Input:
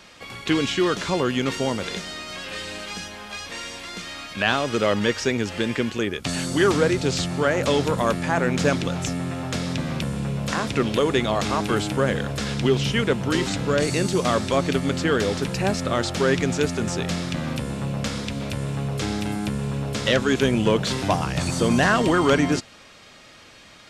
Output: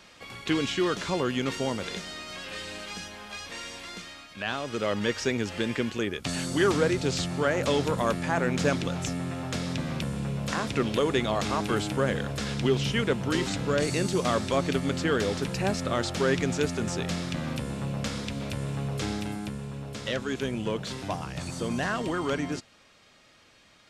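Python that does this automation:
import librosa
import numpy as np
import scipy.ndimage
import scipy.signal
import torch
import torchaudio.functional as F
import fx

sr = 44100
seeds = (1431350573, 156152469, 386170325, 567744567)

y = fx.gain(x, sr, db=fx.line((3.92, -5.0), (4.28, -12.0), (5.22, -4.5), (19.08, -4.5), (19.68, -10.5)))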